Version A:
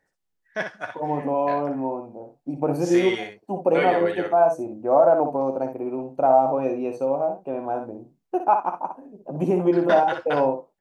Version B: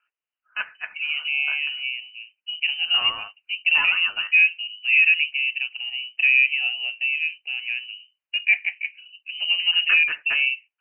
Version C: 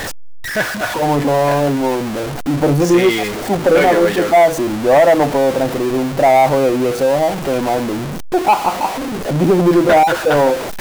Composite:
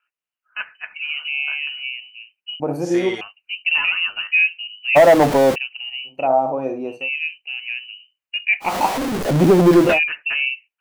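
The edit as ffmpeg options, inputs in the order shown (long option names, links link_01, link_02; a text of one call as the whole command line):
ffmpeg -i take0.wav -i take1.wav -i take2.wav -filter_complex "[0:a]asplit=2[link_01][link_02];[2:a]asplit=2[link_03][link_04];[1:a]asplit=5[link_05][link_06][link_07][link_08][link_09];[link_05]atrim=end=2.602[link_10];[link_01]atrim=start=2.598:end=3.212[link_11];[link_06]atrim=start=3.208:end=4.97[link_12];[link_03]atrim=start=4.95:end=5.56[link_13];[link_07]atrim=start=5.54:end=6.28[link_14];[link_02]atrim=start=6.04:end=7.1[link_15];[link_08]atrim=start=6.86:end=8.76[link_16];[link_04]atrim=start=8.6:end=10[link_17];[link_09]atrim=start=9.84[link_18];[link_10][link_11]acrossfade=duration=0.004:curve1=hsin:curve2=hsin[link_19];[link_19][link_12]acrossfade=duration=0.004:curve1=hsin:curve2=hsin[link_20];[link_20][link_13]acrossfade=duration=0.02:curve1=tri:curve2=tri[link_21];[link_21][link_14]acrossfade=duration=0.02:curve1=tri:curve2=tri[link_22];[link_22][link_15]acrossfade=duration=0.24:curve1=tri:curve2=tri[link_23];[link_23][link_16]acrossfade=duration=0.24:curve1=tri:curve2=tri[link_24];[link_24][link_17]acrossfade=duration=0.16:curve1=tri:curve2=tri[link_25];[link_25][link_18]acrossfade=duration=0.16:curve1=tri:curve2=tri" out.wav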